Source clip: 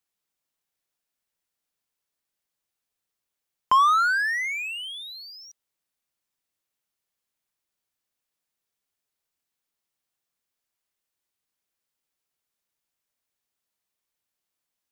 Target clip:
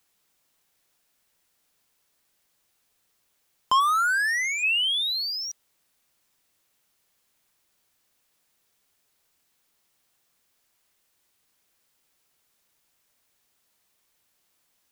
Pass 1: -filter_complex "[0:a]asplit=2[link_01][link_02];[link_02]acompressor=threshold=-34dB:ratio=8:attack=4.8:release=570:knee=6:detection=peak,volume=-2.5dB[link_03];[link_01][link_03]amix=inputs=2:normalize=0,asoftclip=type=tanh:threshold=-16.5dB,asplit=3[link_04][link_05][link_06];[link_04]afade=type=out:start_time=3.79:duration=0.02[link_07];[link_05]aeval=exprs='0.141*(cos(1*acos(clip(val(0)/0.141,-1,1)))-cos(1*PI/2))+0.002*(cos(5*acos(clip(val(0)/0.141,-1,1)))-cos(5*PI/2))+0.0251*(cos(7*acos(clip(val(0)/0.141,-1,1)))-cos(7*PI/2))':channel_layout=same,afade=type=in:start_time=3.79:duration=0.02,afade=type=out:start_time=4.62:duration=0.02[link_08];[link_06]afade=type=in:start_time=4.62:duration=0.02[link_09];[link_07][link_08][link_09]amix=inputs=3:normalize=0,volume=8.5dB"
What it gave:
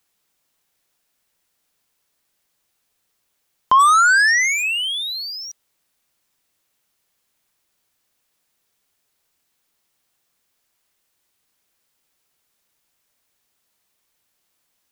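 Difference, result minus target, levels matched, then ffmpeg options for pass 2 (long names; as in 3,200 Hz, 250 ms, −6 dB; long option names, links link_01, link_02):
soft clipping: distortion −8 dB
-filter_complex "[0:a]asplit=2[link_01][link_02];[link_02]acompressor=threshold=-34dB:ratio=8:attack=4.8:release=570:knee=6:detection=peak,volume=-2.5dB[link_03];[link_01][link_03]amix=inputs=2:normalize=0,asoftclip=type=tanh:threshold=-26dB,asplit=3[link_04][link_05][link_06];[link_04]afade=type=out:start_time=3.79:duration=0.02[link_07];[link_05]aeval=exprs='0.141*(cos(1*acos(clip(val(0)/0.141,-1,1)))-cos(1*PI/2))+0.002*(cos(5*acos(clip(val(0)/0.141,-1,1)))-cos(5*PI/2))+0.0251*(cos(7*acos(clip(val(0)/0.141,-1,1)))-cos(7*PI/2))':channel_layout=same,afade=type=in:start_time=3.79:duration=0.02,afade=type=out:start_time=4.62:duration=0.02[link_08];[link_06]afade=type=in:start_time=4.62:duration=0.02[link_09];[link_07][link_08][link_09]amix=inputs=3:normalize=0,volume=8.5dB"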